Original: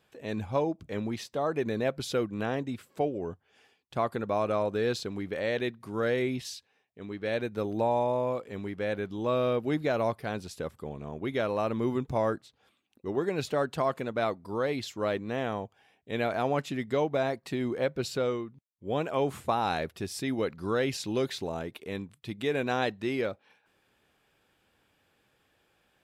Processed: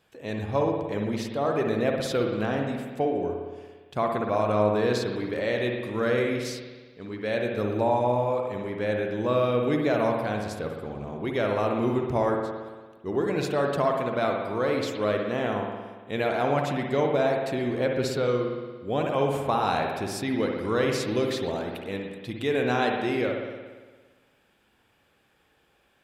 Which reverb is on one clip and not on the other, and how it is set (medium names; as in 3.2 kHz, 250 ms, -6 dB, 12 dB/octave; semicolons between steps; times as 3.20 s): spring tank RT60 1.4 s, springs 57 ms, chirp 70 ms, DRR 1.5 dB; trim +2 dB